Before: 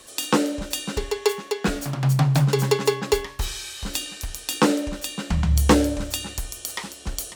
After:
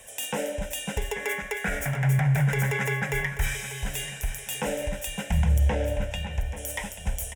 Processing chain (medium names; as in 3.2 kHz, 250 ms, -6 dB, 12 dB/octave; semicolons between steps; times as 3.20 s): 1.15–3.56 s: time-frequency box 1.1–2.4 kHz +9 dB; 5.58–6.56 s: low-pass 4.5 kHz -> 2.6 kHz 12 dB/octave; peak limiter -16 dBFS, peak gain reduction 12 dB; static phaser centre 1.2 kHz, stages 6; feedback delay 836 ms, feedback 38%, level -13 dB; trim +2.5 dB